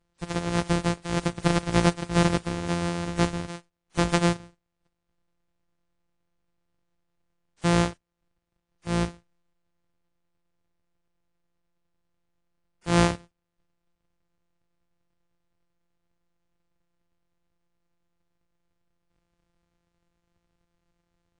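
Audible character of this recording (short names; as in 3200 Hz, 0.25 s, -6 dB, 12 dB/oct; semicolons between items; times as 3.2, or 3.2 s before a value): a buzz of ramps at a fixed pitch in blocks of 256 samples; WMA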